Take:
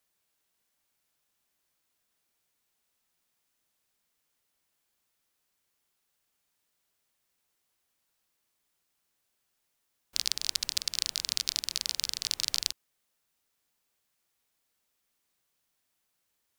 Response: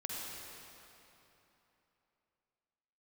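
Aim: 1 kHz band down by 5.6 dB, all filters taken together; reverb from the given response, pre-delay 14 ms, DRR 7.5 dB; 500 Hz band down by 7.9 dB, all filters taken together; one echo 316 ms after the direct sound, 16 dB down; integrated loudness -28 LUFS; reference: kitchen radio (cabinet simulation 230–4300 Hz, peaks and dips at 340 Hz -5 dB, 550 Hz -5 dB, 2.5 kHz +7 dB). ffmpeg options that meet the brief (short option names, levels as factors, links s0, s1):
-filter_complex "[0:a]equalizer=f=500:t=o:g=-4,equalizer=f=1000:t=o:g=-6.5,aecho=1:1:316:0.158,asplit=2[s0][s1];[1:a]atrim=start_sample=2205,adelay=14[s2];[s1][s2]afir=irnorm=-1:irlink=0,volume=0.355[s3];[s0][s3]amix=inputs=2:normalize=0,highpass=230,equalizer=f=340:t=q:w=4:g=-5,equalizer=f=550:t=q:w=4:g=-5,equalizer=f=2500:t=q:w=4:g=7,lowpass=f=4300:w=0.5412,lowpass=f=4300:w=1.3066,volume=2"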